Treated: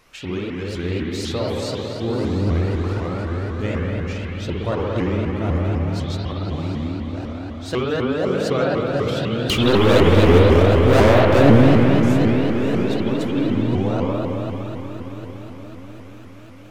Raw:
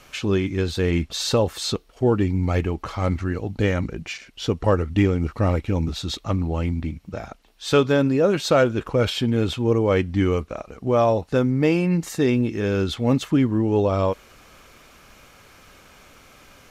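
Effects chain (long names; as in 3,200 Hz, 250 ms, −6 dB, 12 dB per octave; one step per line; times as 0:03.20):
0:09.50–0:11.61: leveller curve on the samples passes 5
on a send: feedback delay with all-pass diffusion 640 ms, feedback 55%, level −11 dB
on the sum: spring reverb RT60 3.7 s, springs 55 ms, chirp 30 ms, DRR −4 dB
pitch modulation by a square or saw wave saw up 4 Hz, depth 250 cents
level −7 dB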